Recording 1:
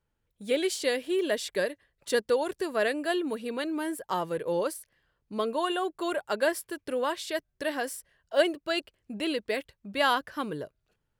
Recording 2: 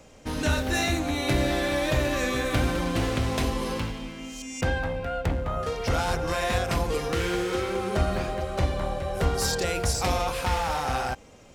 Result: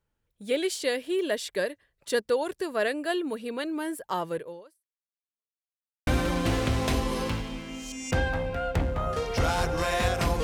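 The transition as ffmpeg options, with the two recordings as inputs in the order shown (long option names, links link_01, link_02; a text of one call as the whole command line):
ffmpeg -i cue0.wav -i cue1.wav -filter_complex "[0:a]apad=whole_dur=10.43,atrim=end=10.43,asplit=2[link_01][link_02];[link_01]atrim=end=5.62,asetpts=PTS-STARTPTS,afade=type=out:start_time=4.37:duration=1.25:curve=exp[link_03];[link_02]atrim=start=5.62:end=6.07,asetpts=PTS-STARTPTS,volume=0[link_04];[1:a]atrim=start=2.57:end=6.93,asetpts=PTS-STARTPTS,afade=type=in:duration=0.004:curve=hsin[link_05];[link_03][link_04][link_05]concat=n=3:v=0:a=1" out.wav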